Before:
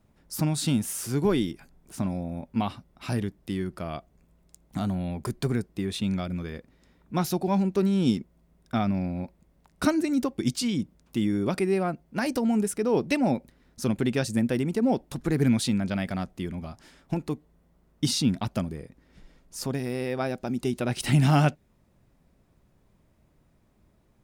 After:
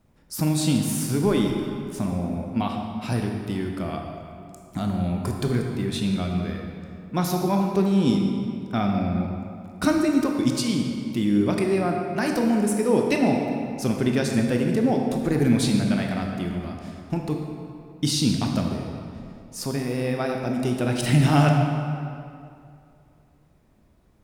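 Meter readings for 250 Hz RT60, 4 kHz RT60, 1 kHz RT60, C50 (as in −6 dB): 2.5 s, 1.6 s, 2.4 s, 3.0 dB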